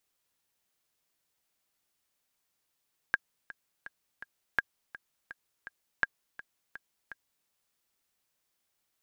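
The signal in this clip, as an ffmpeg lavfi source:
-f lavfi -i "aevalsrc='pow(10,(-11.5-18*gte(mod(t,4*60/166),60/166))/20)*sin(2*PI*1620*mod(t,60/166))*exp(-6.91*mod(t,60/166)/0.03)':d=4.33:s=44100"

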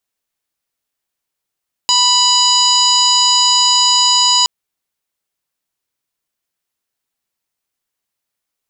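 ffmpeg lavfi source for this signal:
-f lavfi -i "aevalsrc='0.158*sin(2*PI*987*t)+0.0168*sin(2*PI*1974*t)+0.141*sin(2*PI*2961*t)+0.126*sin(2*PI*3948*t)+0.224*sin(2*PI*4935*t)+0.0224*sin(2*PI*5922*t)+0.158*sin(2*PI*6909*t)+0.0266*sin(2*PI*7896*t)':d=2.57:s=44100"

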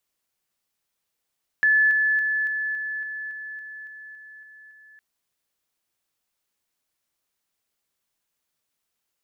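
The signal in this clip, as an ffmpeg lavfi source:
-f lavfi -i "aevalsrc='pow(10,(-15-3*floor(t/0.28))/20)*sin(2*PI*1730*t)':d=3.36:s=44100"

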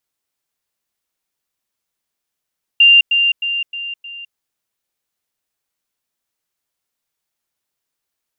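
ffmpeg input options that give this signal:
-f lavfi -i "aevalsrc='pow(10,(-5-6*floor(t/0.31))/20)*sin(2*PI*2790*t)*clip(min(mod(t,0.31),0.21-mod(t,0.31))/0.005,0,1)':d=1.55:s=44100"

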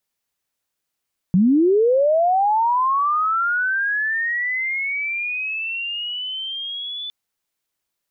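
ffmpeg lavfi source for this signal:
-f lavfi -i "aevalsrc='pow(10,(-11.5-15.5*t/5.76)/20)*sin(2*PI*(170*t+3330*t*t/(2*5.76)))':d=5.76:s=44100"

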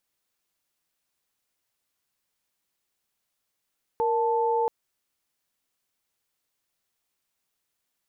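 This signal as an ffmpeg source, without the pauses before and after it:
-f lavfi -i "aevalsrc='0.0631*(sin(2*PI*466.16*t)+sin(2*PI*880*t))':d=0.68:s=44100"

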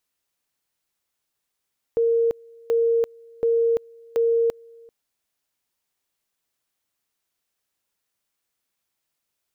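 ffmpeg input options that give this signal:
-f lavfi -i "aevalsrc='pow(10,(-16.5-27.5*gte(mod(t,0.73),0.34))/20)*sin(2*PI*462*t)':d=2.92:s=44100"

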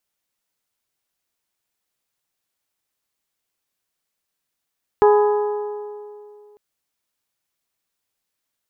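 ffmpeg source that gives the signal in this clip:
-f lavfi -i "aevalsrc='0.335*pow(10,-3*t/2.47)*sin(2*PI*417*t)+0.178*pow(10,-3*t/2.006)*sin(2*PI*834*t)+0.0944*pow(10,-3*t/1.899)*sin(2*PI*1000.8*t)+0.0501*pow(10,-3*t/1.776)*sin(2*PI*1251*t)+0.0266*pow(10,-3*t/1.63)*sin(2*PI*1668*t)':d=1.55:s=44100"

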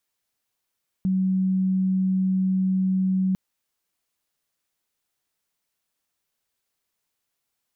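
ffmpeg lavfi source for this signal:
-f lavfi -i "sine=f=188:d=2.3:r=44100,volume=-0.94dB"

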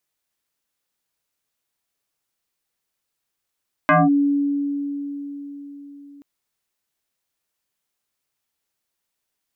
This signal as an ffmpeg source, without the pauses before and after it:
-f lavfi -i "aevalsrc='0.299*pow(10,-3*t/4.49)*sin(2*PI*284*t+3.9*clip(1-t/0.2,0,1)*sin(2*PI*1.58*284*t))':d=2.33:s=44100"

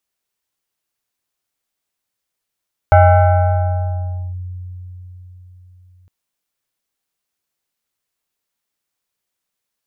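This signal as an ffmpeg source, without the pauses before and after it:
-f lavfi -i "aevalsrc='0.631*pow(10,-3*t/4.43)*sin(2*PI*90.6*t+1.2*clip(1-t/1.43,0,1)*sin(2*PI*7.9*90.6*t))':d=3.16:s=44100"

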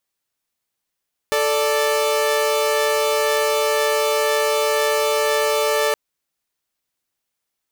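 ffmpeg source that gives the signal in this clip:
-f lavfi -i "aevalsrc='0.141*((2*mod(440*t,1)-1)+(2*mod(587.33*t,1)-1))':d=4.62:s=44100"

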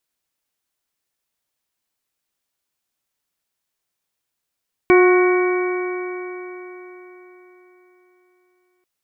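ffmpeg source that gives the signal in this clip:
-f lavfi -i "aevalsrc='0.376*pow(10,-3*t/4.12)*sin(2*PI*361.49*t)+0.0891*pow(10,-3*t/4.12)*sin(2*PI*725.89*t)+0.106*pow(10,-3*t/4.12)*sin(2*PI*1096.08*t)+0.0668*pow(10,-3*t/4.12)*sin(2*PI*1474.86*t)+0.0473*pow(10,-3*t/4.12)*sin(2*PI*1864.92*t)+0.126*pow(10,-3*t/4.12)*sin(2*PI*2268.83*t)':d=3.94:s=44100"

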